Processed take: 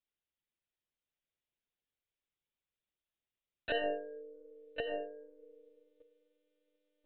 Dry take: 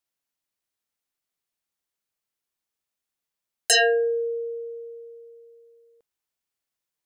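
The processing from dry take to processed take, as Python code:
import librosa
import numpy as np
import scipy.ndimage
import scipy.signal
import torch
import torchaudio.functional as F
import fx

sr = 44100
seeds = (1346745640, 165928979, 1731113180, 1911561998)

p1 = x + fx.echo_single(x, sr, ms=1088, db=-5.5, dry=0)
p2 = fx.env_lowpass_down(p1, sr, base_hz=750.0, full_db=-25.5)
p3 = fx.peak_eq(p2, sr, hz=1100.0, db=-8.5, octaves=1.5)
p4 = fx.lpc_monotone(p3, sr, seeds[0], pitch_hz=300.0, order=16)
p5 = fx.dynamic_eq(p4, sr, hz=1400.0, q=1.8, threshold_db=-48.0, ratio=4.0, max_db=4)
y = p5 * 10.0 ** (-2.5 / 20.0)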